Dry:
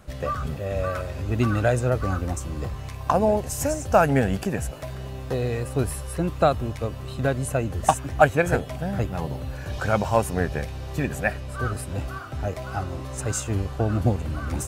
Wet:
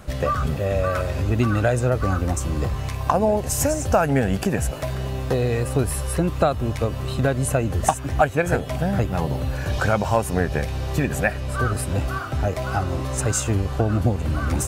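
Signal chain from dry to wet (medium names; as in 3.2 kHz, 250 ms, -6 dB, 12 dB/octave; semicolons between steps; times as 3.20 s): compression 2.5:1, threshold -26 dBFS, peak gain reduction 11 dB; trim +7.5 dB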